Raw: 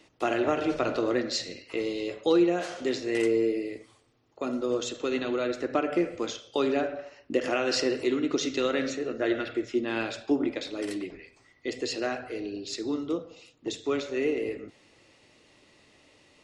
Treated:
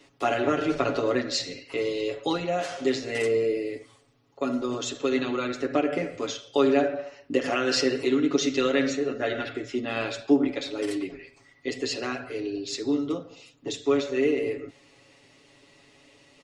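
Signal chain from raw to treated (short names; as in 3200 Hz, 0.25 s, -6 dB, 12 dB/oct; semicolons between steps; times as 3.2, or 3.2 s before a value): comb 7.2 ms, depth 96%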